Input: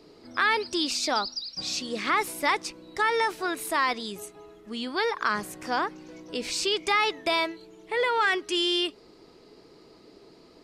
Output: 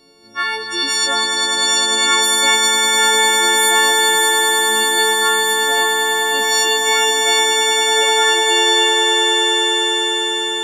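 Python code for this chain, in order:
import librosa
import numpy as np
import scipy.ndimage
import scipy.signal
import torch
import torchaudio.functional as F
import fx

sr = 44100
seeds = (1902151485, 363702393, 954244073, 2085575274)

y = fx.freq_snap(x, sr, grid_st=4)
y = fx.echo_swell(y, sr, ms=100, loudest=8, wet_db=-8.0)
y = y * librosa.db_to_amplitude(-1.0)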